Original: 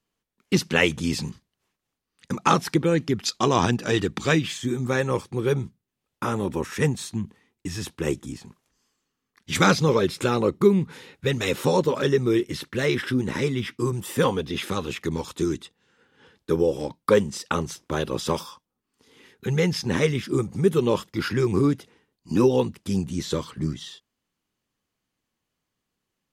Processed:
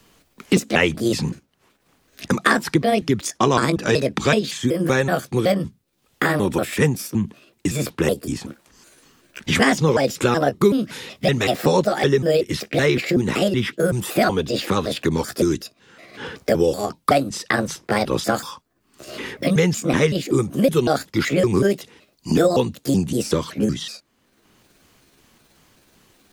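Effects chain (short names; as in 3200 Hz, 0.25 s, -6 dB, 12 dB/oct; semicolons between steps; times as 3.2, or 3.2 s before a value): trilling pitch shifter +5.5 st, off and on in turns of 0.188 s; three-band squash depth 70%; gain +4.5 dB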